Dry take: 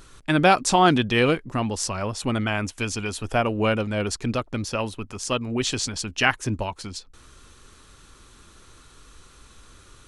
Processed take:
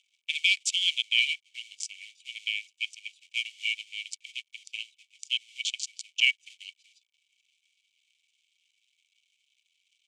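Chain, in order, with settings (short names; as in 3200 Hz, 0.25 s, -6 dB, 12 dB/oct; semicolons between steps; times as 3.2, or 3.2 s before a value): Wiener smoothing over 41 samples; in parallel at -5.5 dB: companded quantiser 4-bit; on the sum: rippled Chebyshev high-pass 2200 Hz, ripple 9 dB; air absorption 110 m; gain +6.5 dB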